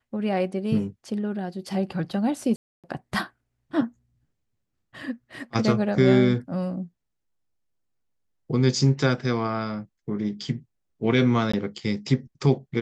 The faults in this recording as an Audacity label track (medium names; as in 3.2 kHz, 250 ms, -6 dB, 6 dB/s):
2.560000	2.840000	dropout 277 ms
11.520000	11.540000	dropout 15 ms